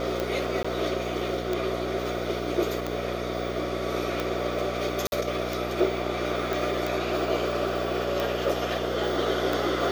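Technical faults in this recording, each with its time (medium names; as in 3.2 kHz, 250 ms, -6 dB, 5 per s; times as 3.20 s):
buzz 60 Hz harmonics 12 -33 dBFS
tick 45 rpm -14 dBFS
0.63–0.65 s: dropout 15 ms
5.07–5.12 s: dropout 51 ms
6.53 s: pop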